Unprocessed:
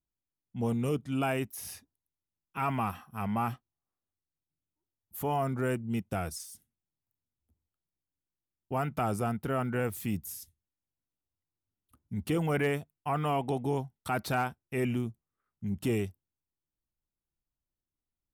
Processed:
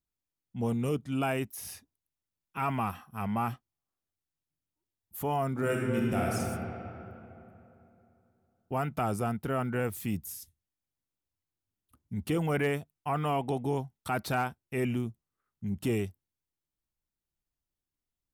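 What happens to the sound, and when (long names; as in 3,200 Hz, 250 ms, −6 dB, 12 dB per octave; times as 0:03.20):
0:05.51–0:06.32: thrown reverb, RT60 3 s, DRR −3 dB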